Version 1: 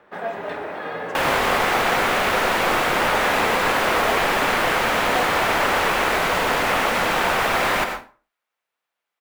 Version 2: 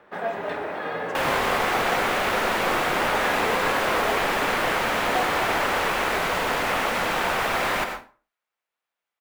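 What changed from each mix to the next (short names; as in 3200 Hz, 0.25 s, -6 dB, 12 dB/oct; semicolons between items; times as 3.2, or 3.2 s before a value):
second sound -4.0 dB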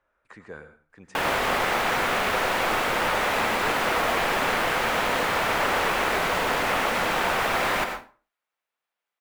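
first sound: muted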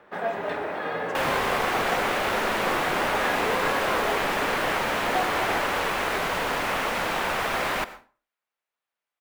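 first sound: unmuted; second sound: send -11.0 dB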